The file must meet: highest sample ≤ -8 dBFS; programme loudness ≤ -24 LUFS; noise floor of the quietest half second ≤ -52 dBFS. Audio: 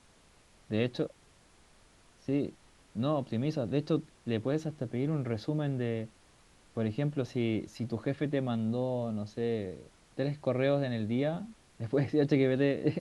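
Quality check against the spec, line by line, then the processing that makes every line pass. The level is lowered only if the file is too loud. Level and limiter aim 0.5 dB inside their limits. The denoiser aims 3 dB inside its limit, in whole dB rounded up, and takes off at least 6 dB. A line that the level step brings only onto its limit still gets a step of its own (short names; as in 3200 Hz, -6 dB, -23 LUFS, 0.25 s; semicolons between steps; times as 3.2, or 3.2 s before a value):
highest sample -14.5 dBFS: OK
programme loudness -32.5 LUFS: OK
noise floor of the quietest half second -62 dBFS: OK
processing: none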